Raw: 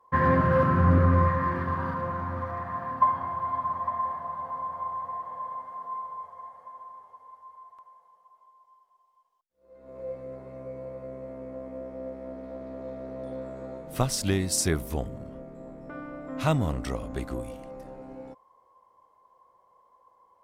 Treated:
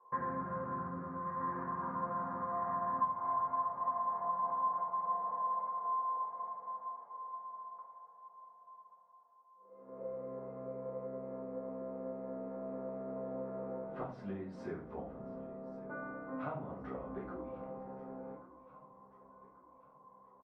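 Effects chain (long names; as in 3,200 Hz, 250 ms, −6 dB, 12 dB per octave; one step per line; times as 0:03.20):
low-pass filter 1,300 Hz 12 dB per octave
downward compressor 10 to 1, threshold −33 dBFS, peak gain reduction 17.5 dB
resonant band-pass 940 Hz, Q 0.65
on a send: repeating echo 1,134 ms, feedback 47%, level −17.5 dB
on the sum: rectangular room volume 33 cubic metres, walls mixed, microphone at 0.92 metres
level −4.5 dB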